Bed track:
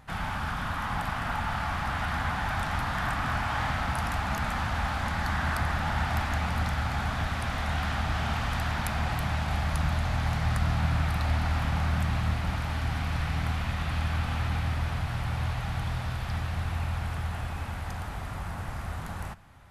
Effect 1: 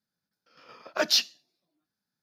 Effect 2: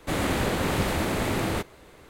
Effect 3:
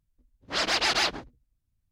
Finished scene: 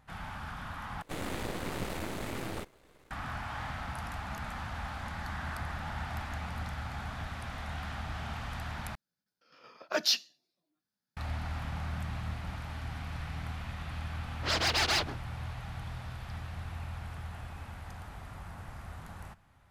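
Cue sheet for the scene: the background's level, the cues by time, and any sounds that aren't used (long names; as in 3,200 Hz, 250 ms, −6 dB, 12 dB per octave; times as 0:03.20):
bed track −9.5 dB
0:01.02: overwrite with 2 −8 dB + gain on one half-wave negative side −12 dB
0:08.95: overwrite with 1 −4.5 dB
0:13.93: mix in 3 −3 dB + hard clipping −19.5 dBFS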